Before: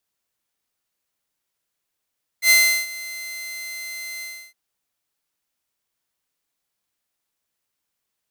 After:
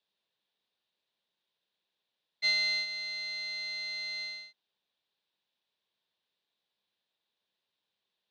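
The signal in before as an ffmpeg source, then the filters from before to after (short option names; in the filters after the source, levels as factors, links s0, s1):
-f lavfi -i "aevalsrc='0.398*(2*mod(2070*t,1)-1)':d=2.112:s=44100,afade=t=in:d=0.081,afade=t=out:st=0.081:d=0.36:silence=0.1,afade=t=out:st=1.8:d=0.312"
-af "highpass=f=120:w=0.5412,highpass=f=120:w=1.3066,equalizer=f=140:t=q:w=4:g=-8,equalizer=f=280:t=q:w=4:g=-8,equalizer=f=730:t=q:w=4:g=-3,equalizer=f=1300:t=q:w=4:g=-9,equalizer=f=2100:t=q:w=4:g=-6,equalizer=f=3700:t=q:w=4:g=8,lowpass=f=4100:w=0.5412,lowpass=f=4100:w=1.3066,acompressor=threshold=0.0501:ratio=6"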